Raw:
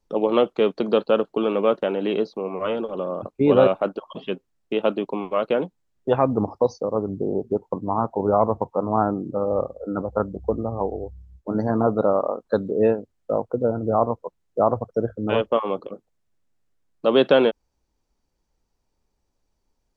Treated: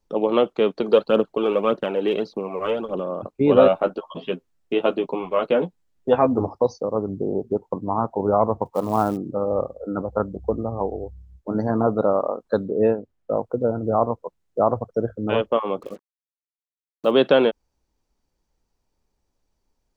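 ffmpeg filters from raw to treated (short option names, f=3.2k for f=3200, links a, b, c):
-filter_complex "[0:a]asplit=3[a][b][c];[a]afade=t=out:st=0.81:d=0.02[d];[b]aphaser=in_gain=1:out_gain=1:delay=2.7:decay=0.46:speed=1.7:type=triangular,afade=t=in:st=0.81:d=0.02,afade=t=out:st=3.01:d=0.02[e];[c]afade=t=in:st=3.01:d=0.02[f];[d][e][f]amix=inputs=3:normalize=0,asettb=1/sr,asplit=3[g][h][i];[g]atrim=end=3.564[j];[h]atrim=start=3.56:end=6.48,asetpts=PTS-STARTPTS,afade=t=in:d=0.004:c=qsin,afade=t=out:st=2.916:d=0.004:c=qsin,asplit=2[k][l];[l]adelay=12,volume=-4dB[m];[k][m]amix=inputs=2:normalize=0,atrim=end_sample=128772[n];[i]atrim=start=6.476[o];[j][n]acrossfade=d=0.004:c1=hsin:c2=qsin[p];[p][o]acrossfade=d=0.004:c1=qsin:c2=hsin,asplit=3[q][r][s];[q]afade=t=out:st=8.65:d=0.02[t];[r]acrusher=bits=6:mode=log:mix=0:aa=0.000001,afade=t=in:st=8.65:d=0.02,afade=t=out:st=9.16:d=0.02[u];[s]afade=t=in:st=9.16:d=0.02[v];[t][u][v]amix=inputs=3:normalize=0,asettb=1/sr,asplit=3[w][x][y];[w]atrim=end=12.654[z];[x]atrim=start=12.65:end=13.37,asetpts=PTS-STARTPTS,afade=t=in:d=0.004:c=qsin,afade=t=out:st=0.716:d=0.004:c=qsin,lowpass=f=2.6k:p=1[aa];[y]atrim=start=13.366[ab];[z][aa]acrossfade=d=0.004:c1=hsin:c2=qsin[ac];[ac][ab]acrossfade=d=0.004:c1=qsin:c2=hsin,asettb=1/sr,asplit=3[ad][ae][af];[ad]atrim=end=15.824[ag];[ae]atrim=start=15.82:end=17.11,asetpts=PTS-STARTPTS,afade=t=in:d=0.004:c=qsin,afade=t=out:st=1.286:d=0.004:c=qsin,acrusher=bits=7:mix=0:aa=0.5[ah];[af]atrim=start=17.106[ai];[ag][ah]acrossfade=d=0.004:c1=hsin:c2=qsin[aj];[aj][ai]acrossfade=d=0.004:c1=qsin:c2=hsin"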